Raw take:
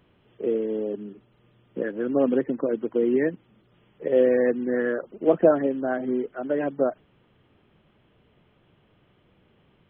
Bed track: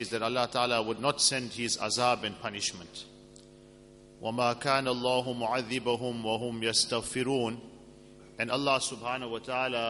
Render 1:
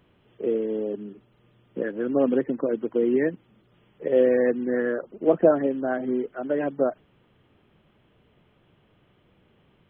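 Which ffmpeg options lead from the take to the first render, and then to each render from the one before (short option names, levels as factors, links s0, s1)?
-filter_complex "[0:a]asettb=1/sr,asplit=3[s0][s1][s2];[s0]atrim=end=4.804[s3];[s1]atrim=start=4.8:end=5.61,asetpts=PTS-STARTPTS,afade=t=in:d=0.004:c=qsin,afade=t=out:st=0.806:d=0.004:c=qsin,highshelf=f=2700:g=-5.5[s4];[s2]atrim=start=5.606[s5];[s3][s4]acrossfade=d=0.004:c1=hsin:c2=qsin[s6];[s6][s5]acrossfade=d=0.004:c1=qsin:c2=hsin"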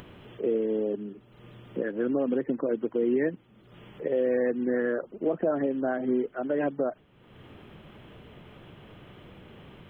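-af "alimiter=limit=0.133:level=0:latency=1:release=126,acompressor=mode=upward:threshold=0.0158:ratio=2.5"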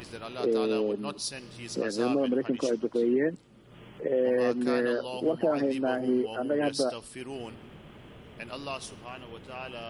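-filter_complex "[1:a]volume=0.335[s0];[0:a][s0]amix=inputs=2:normalize=0"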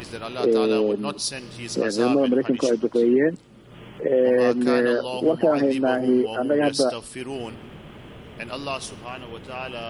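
-af "volume=2.24"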